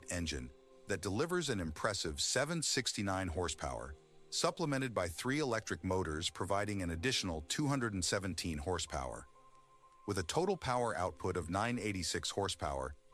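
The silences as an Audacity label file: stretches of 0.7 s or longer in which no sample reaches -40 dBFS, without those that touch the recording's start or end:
9.180000	10.080000	silence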